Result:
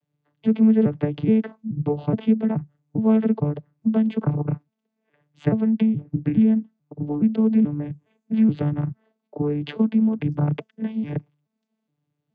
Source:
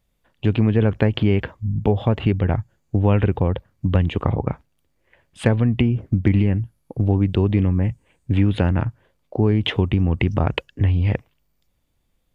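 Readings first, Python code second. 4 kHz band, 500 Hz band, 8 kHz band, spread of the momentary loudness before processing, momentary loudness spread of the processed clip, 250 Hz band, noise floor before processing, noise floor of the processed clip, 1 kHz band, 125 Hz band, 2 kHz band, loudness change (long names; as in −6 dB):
below −10 dB, −3.5 dB, can't be measured, 8 LU, 11 LU, +3.0 dB, −68 dBFS, −80 dBFS, −7.0 dB, −8.0 dB, below −10 dB, −1.5 dB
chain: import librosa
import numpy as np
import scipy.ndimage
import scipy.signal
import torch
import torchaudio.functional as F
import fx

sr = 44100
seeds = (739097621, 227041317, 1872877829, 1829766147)

y = fx.vocoder_arp(x, sr, chord='bare fifth', root=50, every_ms=424)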